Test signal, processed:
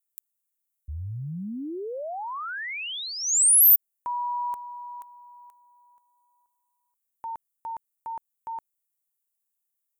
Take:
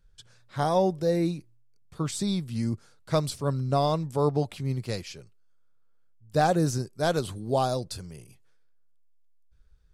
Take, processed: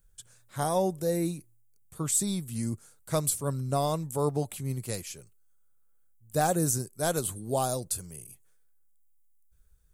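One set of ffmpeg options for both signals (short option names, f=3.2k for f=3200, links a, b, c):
-af "aexciter=amount=6.3:drive=5.9:freq=6.9k,volume=-3.5dB"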